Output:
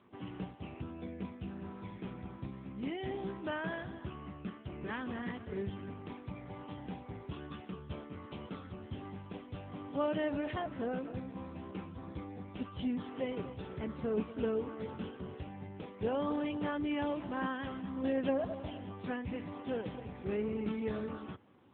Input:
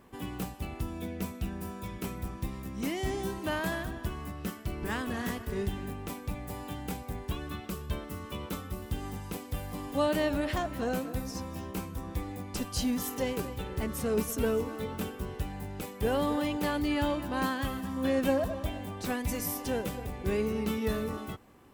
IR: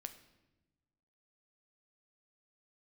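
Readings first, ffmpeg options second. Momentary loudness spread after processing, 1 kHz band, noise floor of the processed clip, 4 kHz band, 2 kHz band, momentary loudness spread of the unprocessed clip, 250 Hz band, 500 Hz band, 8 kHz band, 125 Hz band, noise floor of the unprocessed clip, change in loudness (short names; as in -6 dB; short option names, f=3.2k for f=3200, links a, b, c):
11 LU, -6.0 dB, -51 dBFS, -10.0 dB, -6.5 dB, 9 LU, -4.5 dB, -5.0 dB, under -35 dB, -7.5 dB, -45 dBFS, -6.0 dB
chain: -af "volume=-4.5dB" -ar 8000 -c:a libopencore_amrnb -b:a 7950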